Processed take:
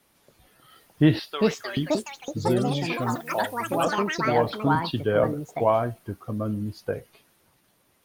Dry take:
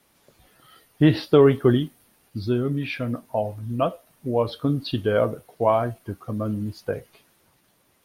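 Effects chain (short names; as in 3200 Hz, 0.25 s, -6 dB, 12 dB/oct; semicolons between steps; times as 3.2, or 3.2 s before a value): 1.19–1.77 HPF 1400 Hz 12 dB/oct; 3.26–3.84 tilt +4 dB/oct; echoes that change speed 0.698 s, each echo +6 st, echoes 3; 4.75–5.24 three-band expander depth 40%; gain -1.5 dB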